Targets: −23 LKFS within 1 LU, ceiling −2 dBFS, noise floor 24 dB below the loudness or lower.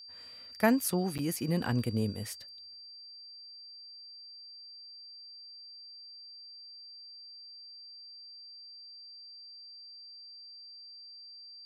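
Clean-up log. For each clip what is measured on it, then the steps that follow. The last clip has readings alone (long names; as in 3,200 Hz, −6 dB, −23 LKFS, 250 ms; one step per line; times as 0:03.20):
number of dropouts 1; longest dropout 8.0 ms; interfering tone 4,700 Hz; level of the tone −47 dBFS; integrated loudness −38.0 LKFS; sample peak −12.5 dBFS; target loudness −23.0 LKFS
→ repair the gap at 0:01.18, 8 ms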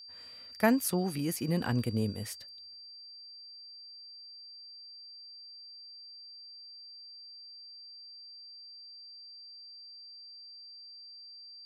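number of dropouts 0; interfering tone 4,700 Hz; level of the tone −47 dBFS
→ notch filter 4,700 Hz, Q 30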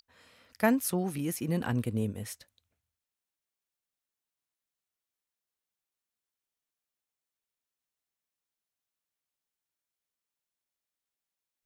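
interfering tone none found; integrated loudness −31.0 LKFS; sample peak −12.5 dBFS; target loudness −23.0 LKFS
→ level +8 dB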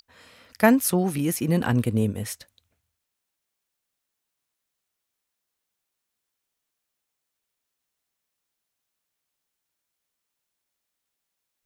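integrated loudness −23.0 LKFS; sample peak −4.5 dBFS; background noise floor −82 dBFS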